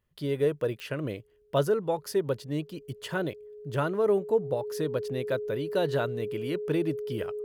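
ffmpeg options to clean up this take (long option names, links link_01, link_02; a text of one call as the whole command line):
ffmpeg -i in.wav -af "adeclick=threshold=4,bandreject=frequency=420:width=30" out.wav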